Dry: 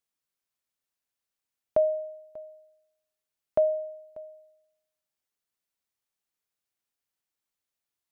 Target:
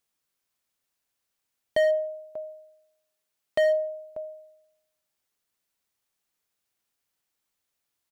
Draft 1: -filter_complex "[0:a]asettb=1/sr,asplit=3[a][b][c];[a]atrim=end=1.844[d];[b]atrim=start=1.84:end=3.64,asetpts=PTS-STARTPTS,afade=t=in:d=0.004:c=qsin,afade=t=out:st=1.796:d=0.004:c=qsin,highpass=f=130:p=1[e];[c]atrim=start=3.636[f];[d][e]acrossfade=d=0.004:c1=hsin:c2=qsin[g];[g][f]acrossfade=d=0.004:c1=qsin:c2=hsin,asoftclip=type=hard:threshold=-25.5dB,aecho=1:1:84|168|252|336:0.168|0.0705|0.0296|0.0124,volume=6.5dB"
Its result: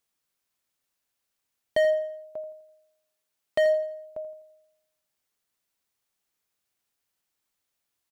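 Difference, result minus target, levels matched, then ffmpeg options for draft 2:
echo-to-direct +11 dB
-filter_complex "[0:a]asettb=1/sr,asplit=3[a][b][c];[a]atrim=end=1.844[d];[b]atrim=start=1.84:end=3.64,asetpts=PTS-STARTPTS,afade=t=in:d=0.004:c=qsin,afade=t=out:st=1.796:d=0.004:c=qsin,highpass=f=130:p=1[e];[c]atrim=start=3.636[f];[d][e]acrossfade=d=0.004:c1=hsin:c2=qsin[g];[g][f]acrossfade=d=0.004:c1=qsin:c2=hsin,asoftclip=type=hard:threshold=-25.5dB,aecho=1:1:84|168:0.0473|0.0199,volume=6.5dB"

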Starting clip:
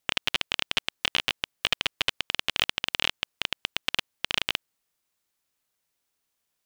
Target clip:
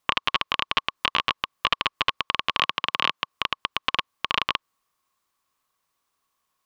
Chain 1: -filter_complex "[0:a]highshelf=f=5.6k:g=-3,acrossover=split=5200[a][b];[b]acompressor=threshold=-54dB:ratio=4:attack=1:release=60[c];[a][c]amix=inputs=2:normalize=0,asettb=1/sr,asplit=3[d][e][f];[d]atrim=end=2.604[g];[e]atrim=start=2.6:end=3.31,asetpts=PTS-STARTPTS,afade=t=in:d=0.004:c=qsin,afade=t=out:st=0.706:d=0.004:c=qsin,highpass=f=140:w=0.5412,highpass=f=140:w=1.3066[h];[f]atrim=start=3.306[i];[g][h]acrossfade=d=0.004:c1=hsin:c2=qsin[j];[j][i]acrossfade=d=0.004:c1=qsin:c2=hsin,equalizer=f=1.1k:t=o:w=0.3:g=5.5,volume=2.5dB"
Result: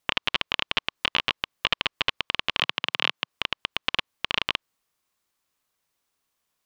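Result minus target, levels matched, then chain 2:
1000 Hz band -6.0 dB
-filter_complex "[0:a]highshelf=f=5.6k:g=-3,acrossover=split=5200[a][b];[b]acompressor=threshold=-54dB:ratio=4:attack=1:release=60[c];[a][c]amix=inputs=2:normalize=0,asettb=1/sr,asplit=3[d][e][f];[d]atrim=end=2.604[g];[e]atrim=start=2.6:end=3.31,asetpts=PTS-STARTPTS,afade=t=in:d=0.004:c=qsin,afade=t=out:st=0.706:d=0.004:c=qsin,highpass=f=140:w=0.5412,highpass=f=140:w=1.3066[h];[f]atrim=start=3.306[i];[g][h]acrossfade=d=0.004:c1=hsin:c2=qsin[j];[j][i]acrossfade=d=0.004:c1=qsin:c2=hsin,equalizer=f=1.1k:t=o:w=0.3:g=17,volume=2.5dB"

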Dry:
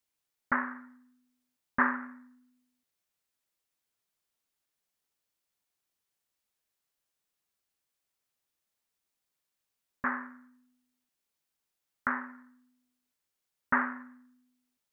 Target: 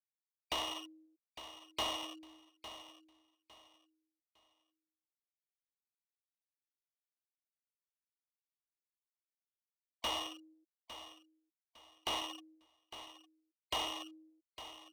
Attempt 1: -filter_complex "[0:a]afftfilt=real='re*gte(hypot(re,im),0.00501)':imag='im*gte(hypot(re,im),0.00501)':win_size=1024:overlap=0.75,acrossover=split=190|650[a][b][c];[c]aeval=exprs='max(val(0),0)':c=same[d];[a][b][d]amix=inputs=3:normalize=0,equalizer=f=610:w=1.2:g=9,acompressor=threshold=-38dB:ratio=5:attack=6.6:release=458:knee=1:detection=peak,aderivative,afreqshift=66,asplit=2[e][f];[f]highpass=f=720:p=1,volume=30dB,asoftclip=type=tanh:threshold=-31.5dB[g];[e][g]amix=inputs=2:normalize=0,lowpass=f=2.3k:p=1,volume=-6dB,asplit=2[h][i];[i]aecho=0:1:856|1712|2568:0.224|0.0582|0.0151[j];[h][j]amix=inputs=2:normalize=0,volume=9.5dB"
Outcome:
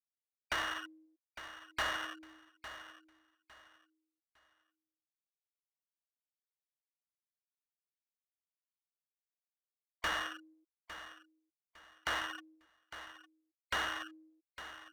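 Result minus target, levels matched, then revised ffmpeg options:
2000 Hz band +9.5 dB
-filter_complex "[0:a]afftfilt=real='re*gte(hypot(re,im),0.00501)':imag='im*gte(hypot(re,im),0.00501)':win_size=1024:overlap=0.75,acrossover=split=190|650[a][b][c];[c]aeval=exprs='max(val(0),0)':c=same[d];[a][b][d]amix=inputs=3:normalize=0,asuperstop=centerf=1500:order=4:qfactor=1,equalizer=f=610:w=1.2:g=9,acompressor=threshold=-38dB:ratio=5:attack=6.6:release=458:knee=1:detection=peak,aderivative,afreqshift=66,asplit=2[e][f];[f]highpass=f=720:p=1,volume=30dB,asoftclip=type=tanh:threshold=-31.5dB[g];[e][g]amix=inputs=2:normalize=0,lowpass=f=2.3k:p=1,volume=-6dB,asplit=2[h][i];[i]aecho=0:1:856|1712|2568:0.224|0.0582|0.0151[j];[h][j]amix=inputs=2:normalize=0,volume=9.5dB"

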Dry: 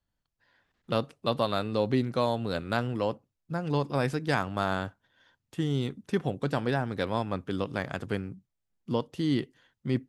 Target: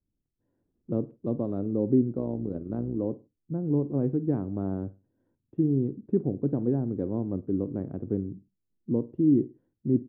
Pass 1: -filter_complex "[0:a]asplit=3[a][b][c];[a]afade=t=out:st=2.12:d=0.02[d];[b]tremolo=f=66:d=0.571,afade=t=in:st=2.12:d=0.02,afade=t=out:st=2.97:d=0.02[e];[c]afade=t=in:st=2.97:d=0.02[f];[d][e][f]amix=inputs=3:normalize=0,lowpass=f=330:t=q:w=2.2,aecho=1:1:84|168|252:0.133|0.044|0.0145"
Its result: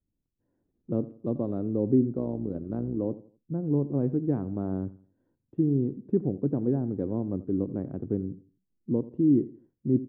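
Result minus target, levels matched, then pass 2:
echo 33 ms late
-filter_complex "[0:a]asplit=3[a][b][c];[a]afade=t=out:st=2.12:d=0.02[d];[b]tremolo=f=66:d=0.571,afade=t=in:st=2.12:d=0.02,afade=t=out:st=2.97:d=0.02[e];[c]afade=t=in:st=2.97:d=0.02[f];[d][e][f]amix=inputs=3:normalize=0,lowpass=f=330:t=q:w=2.2,aecho=1:1:51|102|153:0.133|0.044|0.0145"

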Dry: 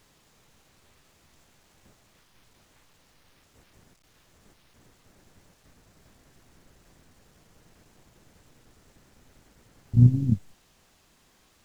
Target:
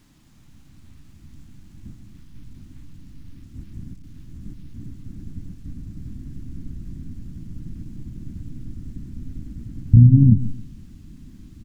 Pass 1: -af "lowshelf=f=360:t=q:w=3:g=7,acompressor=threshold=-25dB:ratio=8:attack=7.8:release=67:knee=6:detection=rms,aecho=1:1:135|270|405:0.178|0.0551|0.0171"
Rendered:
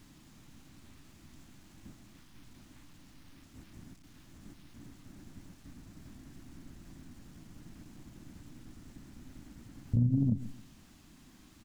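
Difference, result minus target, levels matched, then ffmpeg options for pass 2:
250 Hz band +3.5 dB
-af "lowshelf=f=360:t=q:w=3:g=7,acompressor=threshold=-25dB:ratio=8:attack=7.8:release=67:knee=6:detection=rms,asubboost=boost=10.5:cutoff=220,aecho=1:1:135|270|405:0.178|0.0551|0.0171"

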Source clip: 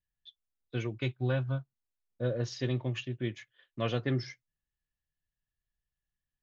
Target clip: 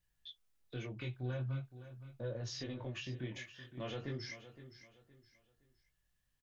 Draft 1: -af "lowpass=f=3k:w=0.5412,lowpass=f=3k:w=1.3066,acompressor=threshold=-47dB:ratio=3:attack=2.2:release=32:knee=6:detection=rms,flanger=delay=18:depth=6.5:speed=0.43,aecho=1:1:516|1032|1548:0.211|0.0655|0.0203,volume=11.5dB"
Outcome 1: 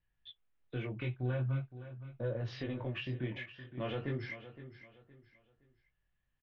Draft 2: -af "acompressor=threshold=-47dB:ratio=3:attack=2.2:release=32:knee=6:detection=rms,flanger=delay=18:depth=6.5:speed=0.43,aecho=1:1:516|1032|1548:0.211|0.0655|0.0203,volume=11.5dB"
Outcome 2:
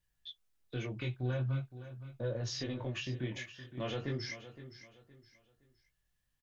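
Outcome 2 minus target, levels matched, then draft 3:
compressor: peak gain reduction -4.5 dB
-af "acompressor=threshold=-54dB:ratio=3:attack=2.2:release=32:knee=6:detection=rms,flanger=delay=18:depth=6.5:speed=0.43,aecho=1:1:516|1032|1548:0.211|0.0655|0.0203,volume=11.5dB"

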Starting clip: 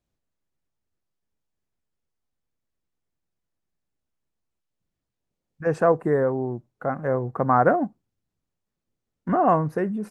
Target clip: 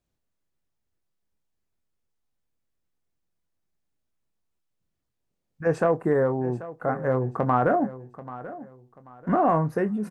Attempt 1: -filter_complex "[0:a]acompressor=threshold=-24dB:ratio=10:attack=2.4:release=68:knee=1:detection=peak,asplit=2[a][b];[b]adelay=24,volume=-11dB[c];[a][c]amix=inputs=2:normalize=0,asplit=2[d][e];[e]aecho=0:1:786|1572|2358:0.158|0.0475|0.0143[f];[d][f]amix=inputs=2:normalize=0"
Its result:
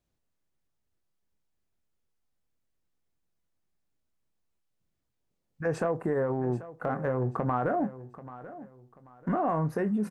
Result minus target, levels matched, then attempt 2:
compressor: peak gain reduction +7 dB
-filter_complex "[0:a]acompressor=threshold=-16dB:ratio=10:attack=2.4:release=68:knee=1:detection=peak,asplit=2[a][b];[b]adelay=24,volume=-11dB[c];[a][c]amix=inputs=2:normalize=0,asplit=2[d][e];[e]aecho=0:1:786|1572|2358:0.158|0.0475|0.0143[f];[d][f]amix=inputs=2:normalize=0"

